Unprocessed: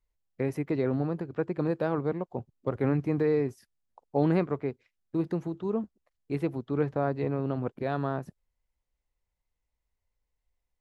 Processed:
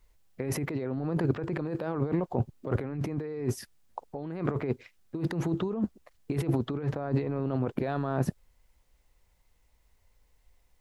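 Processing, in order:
compressor whose output falls as the input rises −38 dBFS, ratio −1
level +7.5 dB

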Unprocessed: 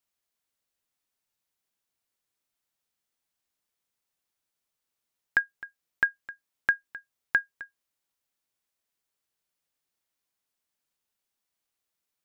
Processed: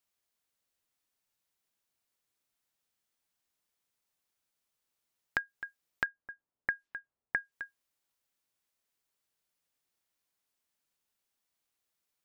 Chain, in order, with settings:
0:06.06–0:07.52: low-pass that shuts in the quiet parts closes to 730 Hz, open at −25.5 dBFS
downward compressor, threshold −29 dBFS, peak gain reduction 10.5 dB

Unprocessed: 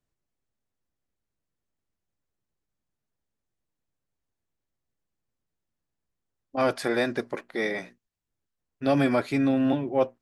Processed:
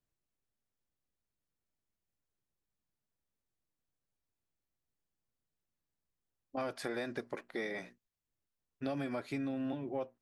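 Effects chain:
downward compressor 6 to 1, threshold −29 dBFS, peak gain reduction 11.5 dB
level −5.5 dB

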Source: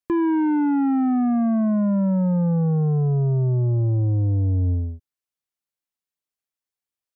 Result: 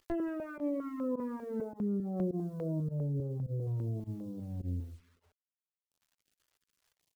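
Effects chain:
lower of the sound and its delayed copy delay 0.63 ms
high-frequency loss of the air 130 metres
upward compression, threshold −38 dBFS
feedback echo with a low-pass in the loop 165 ms, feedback 32%, low-pass 1,300 Hz, level −18 dB
multi-voice chorus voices 2, 0.29 Hz, delay 15 ms, depth 1.2 ms
bit reduction 10 bits
brickwall limiter −20.5 dBFS, peak gain reduction 6.5 dB
fake sidechain pumping 104 BPM, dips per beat 1, −12 dB, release 76 ms
reverb reduction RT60 0.57 s
0:01.61–0:03.67: graphic EQ with 10 bands 125 Hz −3 dB, 500 Hz +10 dB, 1,000 Hz −10 dB, 2,000 Hz −7 dB
notch on a step sequencer 5 Hz 200–2,000 Hz
level −5 dB

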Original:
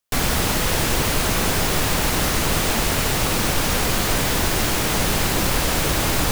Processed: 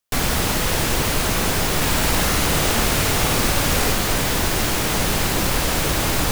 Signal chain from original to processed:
0:01.76–0:03.93: flutter between parallel walls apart 9.2 metres, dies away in 0.65 s

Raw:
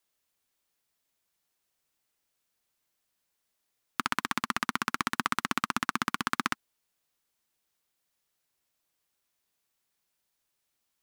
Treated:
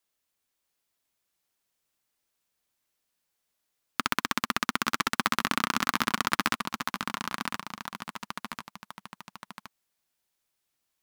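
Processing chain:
in parallel at −10 dB: log-companded quantiser 2 bits
on the sum: delay with pitch and tempo change per echo 633 ms, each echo −1 semitone, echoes 3, each echo −6 dB
level −1.5 dB

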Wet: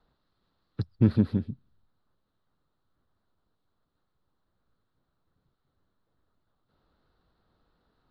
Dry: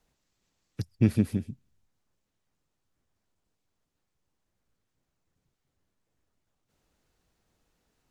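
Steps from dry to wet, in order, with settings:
drawn EQ curve 840 Hz 0 dB, 1,300 Hz +5 dB, 2,400 Hz −12 dB, 4,100 Hz +1 dB, 6,400 Hz −28 dB
in parallel at −6.5 dB: soft clipping −26 dBFS, distortion −5 dB

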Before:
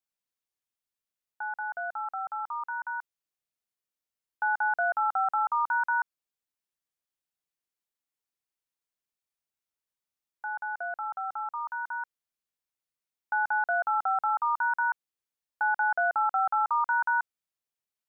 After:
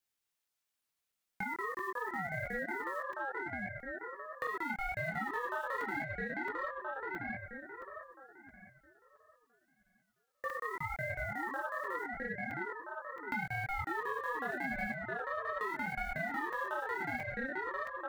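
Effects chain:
one scale factor per block 5 bits
high-pass filter 480 Hz
in parallel at −9.5 dB: gain into a clipping stage and back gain 26.5 dB
on the sum: multi-voice chorus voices 4, 1.4 Hz, delay 21 ms, depth 3 ms
tape delay 663 ms, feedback 45%, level −4 dB, low-pass 1,500 Hz
downward compressor 6 to 1, threshold −41 dBFS, peak gain reduction 17.5 dB
soft clipping −30.5 dBFS, distortion −28 dB
regular buffer underruns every 0.67 s, samples 128, zero, from 0:00.45
ring modulator whose carrier an LFO sweeps 530 Hz, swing 40%, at 0.81 Hz
level +8.5 dB

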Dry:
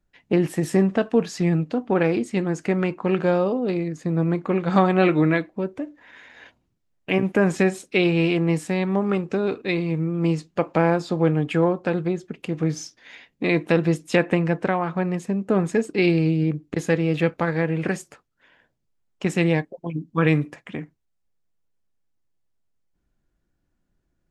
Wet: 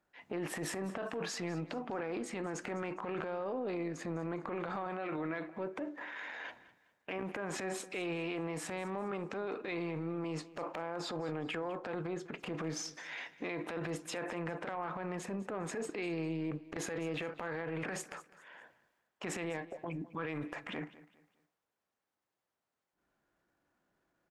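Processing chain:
high-pass filter 250 Hz 6 dB per octave
parametric band 1,000 Hz +11 dB 2.9 octaves
brickwall limiter −13 dBFS, peak gain reduction 16 dB
transient designer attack −9 dB, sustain +7 dB
downward compressor 3 to 1, threshold −34 dBFS, peak gain reduction 12 dB
repeating echo 204 ms, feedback 33%, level −18 dB
on a send at −21.5 dB: convolution reverb, pre-delay 3 ms
on the sum: level −4.5 dB

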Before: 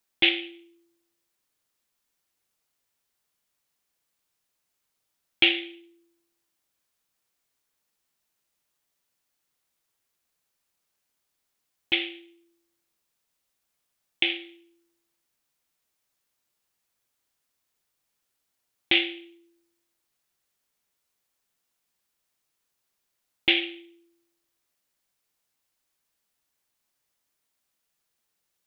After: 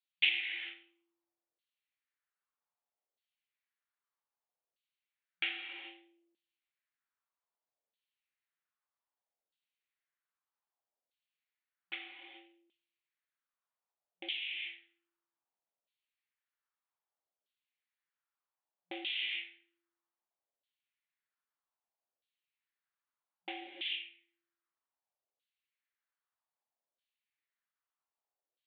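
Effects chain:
reverb whose tail is shaped and stops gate 460 ms flat, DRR 1.5 dB
auto-filter band-pass saw down 0.63 Hz 540–3,400 Hz
brick-wall band-pass 180–4,600 Hz
level −6.5 dB

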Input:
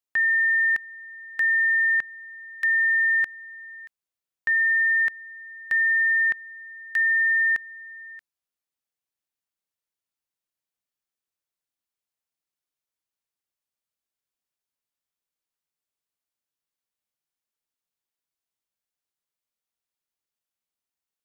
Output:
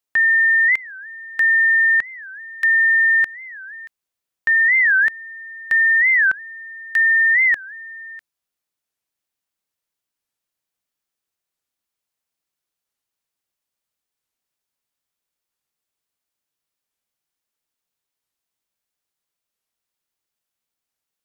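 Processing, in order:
wow of a warped record 45 rpm, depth 250 cents
level +6 dB

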